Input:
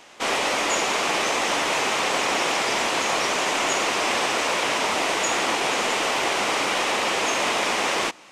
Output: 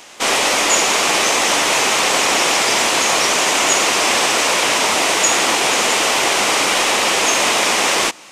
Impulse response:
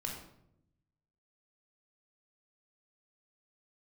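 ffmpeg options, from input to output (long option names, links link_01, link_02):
-af "aeval=exprs='0.335*(cos(1*acos(clip(val(0)/0.335,-1,1)))-cos(1*PI/2))+0.00422*(cos(2*acos(clip(val(0)/0.335,-1,1)))-cos(2*PI/2))':channel_layout=same,highshelf=frequency=4900:gain=10,volume=5.5dB"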